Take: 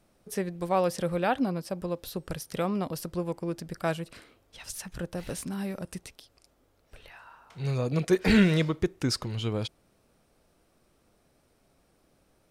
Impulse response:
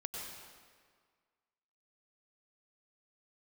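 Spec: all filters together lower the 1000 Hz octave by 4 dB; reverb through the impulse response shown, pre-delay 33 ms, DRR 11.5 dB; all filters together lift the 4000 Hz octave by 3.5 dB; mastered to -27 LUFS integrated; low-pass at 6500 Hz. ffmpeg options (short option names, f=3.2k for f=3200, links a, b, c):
-filter_complex "[0:a]lowpass=6.5k,equalizer=f=1k:t=o:g=-6,equalizer=f=4k:t=o:g=5.5,asplit=2[a][b];[1:a]atrim=start_sample=2205,adelay=33[c];[b][c]afir=irnorm=-1:irlink=0,volume=-11.5dB[d];[a][d]amix=inputs=2:normalize=0,volume=3dB"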